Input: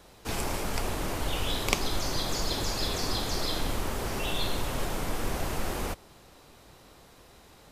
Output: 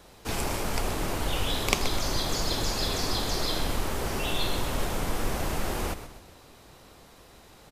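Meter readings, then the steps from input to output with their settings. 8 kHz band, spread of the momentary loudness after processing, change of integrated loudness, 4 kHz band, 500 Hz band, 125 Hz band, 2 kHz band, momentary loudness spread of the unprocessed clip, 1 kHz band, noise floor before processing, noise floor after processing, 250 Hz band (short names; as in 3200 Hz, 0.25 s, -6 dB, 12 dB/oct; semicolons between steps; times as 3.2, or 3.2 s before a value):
+2.0 dB, 5 LU, +2.0 dB, +2.0 dB, +2.0 dB, +2.0 dB, +2.0 dB, 5 LU, +2.0 dB, -55 dBFS, -53 dBFS, +2.0 dB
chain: frequency-shifting echo 0.127 s, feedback 41%, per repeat -38 Hz, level -11.5 dB; gain +1.5 dB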